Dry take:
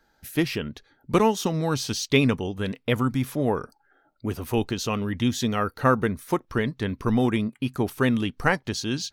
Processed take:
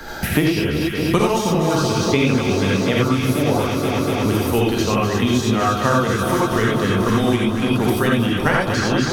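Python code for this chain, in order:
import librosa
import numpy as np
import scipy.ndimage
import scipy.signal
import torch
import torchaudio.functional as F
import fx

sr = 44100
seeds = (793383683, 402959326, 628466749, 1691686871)

y = fx.echo_alternate(x, sr, ms=121, hz=1200.0, feedback_pct=89, wet_db=-8)
y = fx.rev_gated(y, sr, seeds[0], gate_ms=110, shape='rising', drr_db=-4.0)
y = fx.band_squash(y, sr, depth_pct=100)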